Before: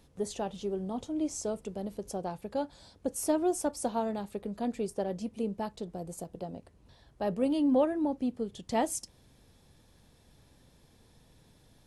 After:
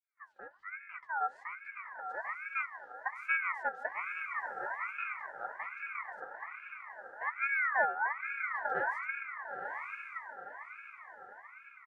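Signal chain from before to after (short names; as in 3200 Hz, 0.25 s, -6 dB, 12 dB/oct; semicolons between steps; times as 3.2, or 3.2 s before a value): opening faded in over 1.06 s; harmoniser -12 st -4 dB, -5 st -3 dB; double band-pass 410 Hz, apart 0.78 oct; on a send: diffused feedback echo 0.996 s, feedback 46%, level -4.5 dB; on the sum: ring modulator with a swept carrier 1500 Hz, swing 30%, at 1.2 Hz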